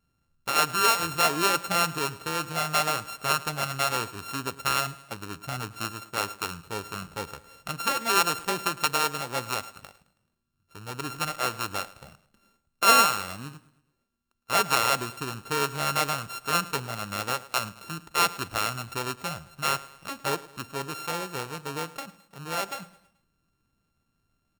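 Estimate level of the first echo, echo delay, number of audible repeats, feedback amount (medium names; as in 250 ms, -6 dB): -19.0 dB, 108 ms, 3, 47%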